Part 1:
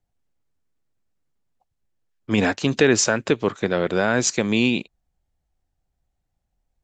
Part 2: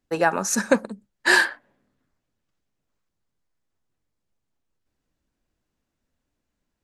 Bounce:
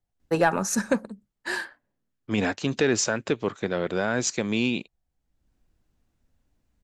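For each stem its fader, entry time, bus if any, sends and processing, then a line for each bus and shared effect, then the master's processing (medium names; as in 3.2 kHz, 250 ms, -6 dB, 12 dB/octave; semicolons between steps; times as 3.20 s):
-5.0 dB, 0.00 s, no send, none
+1.0 dB, 0.20 s, no send, bass shelf 180 Hz +11 dB; auto duck -23 dB, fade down 1.95 s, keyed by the first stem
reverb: none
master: saturation -9 dBFS, distortion -22 dB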